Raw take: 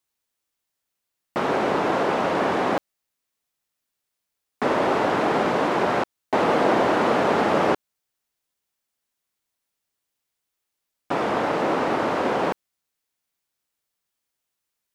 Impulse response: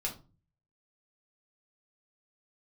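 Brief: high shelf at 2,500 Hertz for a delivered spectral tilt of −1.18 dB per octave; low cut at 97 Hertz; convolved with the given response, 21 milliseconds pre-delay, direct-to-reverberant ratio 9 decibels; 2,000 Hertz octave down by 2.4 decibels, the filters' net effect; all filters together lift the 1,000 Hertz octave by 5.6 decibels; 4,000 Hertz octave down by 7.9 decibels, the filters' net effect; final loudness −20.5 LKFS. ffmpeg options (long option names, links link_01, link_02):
-filter_complex "[0:a]highpass=97,equalizer=frequency=1000:width_type=o:gain=9,equalizer=frequency=2000:width_type=o:gain=-4,highshelf=frequency=2500:gain=-6,equalizer=frequency=4000:width_type=o:gain=-4.5,asplit=2[link_01][link_02];[1:a]atrim=start_sample=2205,adelay=21[link_03];[link_02][link_03]afir=irnorm=-1:irlink=0,volume=-11.5dB[link_04];[link_01][link_04]amix=inputs=2:normalize=0,volume=-1.5dB"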